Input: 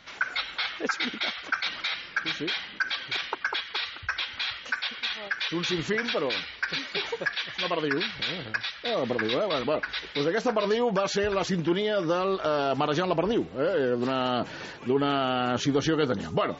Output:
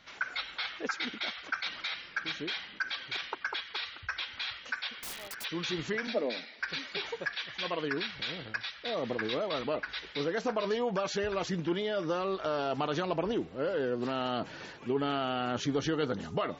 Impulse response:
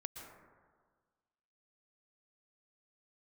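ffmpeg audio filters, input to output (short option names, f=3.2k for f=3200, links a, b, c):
-filter_complex "[0:a]asplit=3[a][b][c];[a]afade=t=out:st=4.94:d=0.02[d];[b]aeval=exprs='(mod(28.2*val(0)+1,2)-1)/28.2':c=same,afade=t=in:st=4.94:d=0.02,afade=t=out:st=5.43:d=0.02[e];[c]afade=t=in:st=5.43:d=0.02[f];[d][e][f]amix=inputs=3:normalize=0,asettb=1/sr,asplit=3[g][h][i];[g]atrim=end=6.074[j];[h]atrim=start=6.07:end=6.6,asetpts=PTS-STARTPTS,afade=t=in:d=0.004:c=qsin,afade=t=out:st=0.526:d=0.004:c=qsin,highpass=f=200:w=0.5412,highpass=f=200:w=1.3066,equalizer=f=230:t=q:w=4:g=10,equalizer=f=630:t=q:w=4:g=8,equalizer=f=1.1k:t=q:w=4:g=-9,equalizer=f=1.5k:t=q:w=4:g=-5,equalizer=f=3k:t=q:w=4:g=-10,lowpass=f=6k:w=0.5412,lowpass=f=6k:w=1.3066[k];[i]atrim=start=6.596[l];[j][k]acrossfade=d=0.004:c1=hsin:c2=qsin[m];[m][l]acrossfade=d=0.004:c1=qsin:c2=hsin,volume=-6dB"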